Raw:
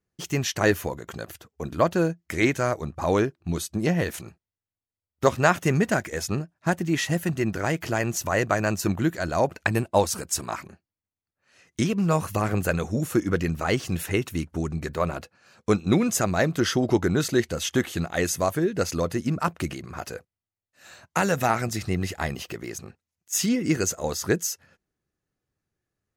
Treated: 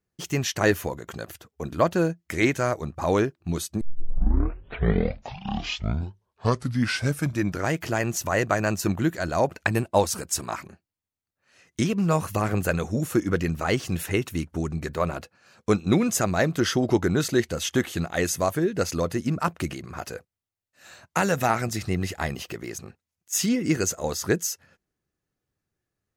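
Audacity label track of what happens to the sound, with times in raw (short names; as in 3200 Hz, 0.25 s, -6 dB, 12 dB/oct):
3.810000	3.810000	tape start 3.95 s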